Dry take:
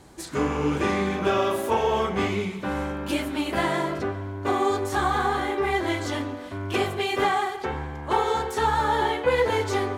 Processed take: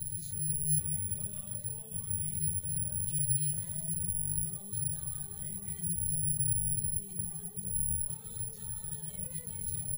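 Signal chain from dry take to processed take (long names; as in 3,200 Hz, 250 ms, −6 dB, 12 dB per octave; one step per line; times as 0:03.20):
sub-octave generator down 1 octave, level +4 dB
0:05.85–0:07.97: tilt shelving filter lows +9 dB, about 810 Hz
repeating echo 516 ms, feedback 59%, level −19.5 dB
four-comb reverb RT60 0.33 s, combs from 26 ms, DRR 5.5 dB
flanger 0.6 Hz, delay 8.3 ms, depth 3.8 ms, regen +31%
hum removal 70.78 Hz, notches 38
reverb reduction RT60 0.55 s
downward compressor 2 to 1, threshold −49 dBFS, peak gain reduction 18 dB
brickwall limiter −40.5 dBFS, peak gain reduction 14.5 dB
drawn EQ curve 100 Hz 0 dB, 150 Hz +9 dB, 240 Hz −22 dB, 580 Hz −15 dB, 830 Hz −24 dB, 1,500 Hz −21 dB, 4,100 Hz −8 dB
bad sample-rate conversion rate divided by 4×, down filtered, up zero stuff
level +8 dB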